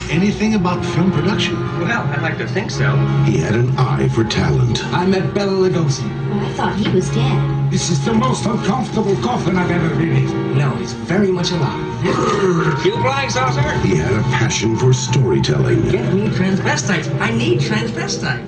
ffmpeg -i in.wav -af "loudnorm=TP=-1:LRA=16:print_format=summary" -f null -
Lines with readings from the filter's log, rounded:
Input Integrated:    -16.7 LUFS
Input True Peak:      -3.2 dBTP
Input LRA:             1.5 LU
Input Threshold:     -26.7 LUFS